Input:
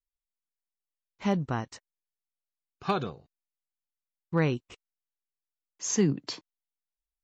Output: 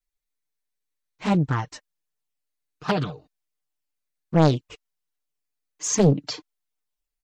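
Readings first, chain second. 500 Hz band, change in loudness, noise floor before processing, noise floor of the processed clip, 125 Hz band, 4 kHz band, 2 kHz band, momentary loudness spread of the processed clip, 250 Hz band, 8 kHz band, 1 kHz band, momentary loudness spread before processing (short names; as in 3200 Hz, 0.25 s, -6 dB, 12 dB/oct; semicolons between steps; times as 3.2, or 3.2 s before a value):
+7.0 dB, +7.0 dB, under -85 dBFS, -82 dBFS, +9.0 dB, +6.0 dB, +3.5 dB, 15 LU, +6.0 dB, n/a, +6.0 dB, 13 LU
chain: comb 6.6 ms, depth 67%; envelope flanger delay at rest 7.1 ms, full sweep at -20.5 dBFS; Doppler distortion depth 0.83 ms; gain +7 dB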